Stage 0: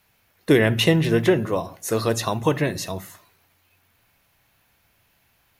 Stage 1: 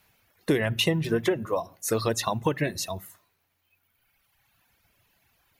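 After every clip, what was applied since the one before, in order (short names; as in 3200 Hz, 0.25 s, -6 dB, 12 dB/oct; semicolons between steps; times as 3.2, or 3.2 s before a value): reverb removal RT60 2 s; compressor 4:1, threshold -21 dBFS, peak gain reduction 8.5 dB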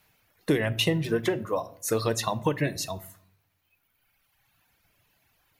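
shoebox room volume 670 m³, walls furnished, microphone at 0.48 m; gain -1 dB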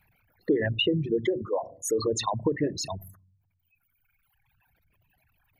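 formant sharpening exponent 3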